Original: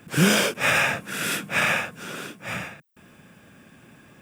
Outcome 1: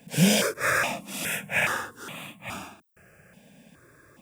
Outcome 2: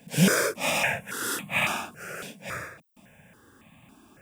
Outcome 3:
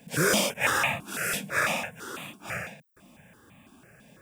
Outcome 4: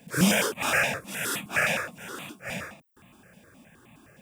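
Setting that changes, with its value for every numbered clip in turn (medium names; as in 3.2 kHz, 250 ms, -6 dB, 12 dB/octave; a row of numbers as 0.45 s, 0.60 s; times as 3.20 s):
stepped phaser, rate: 2.4 Hz, 3.6 Hz, 6 Hz, 9.6 Hz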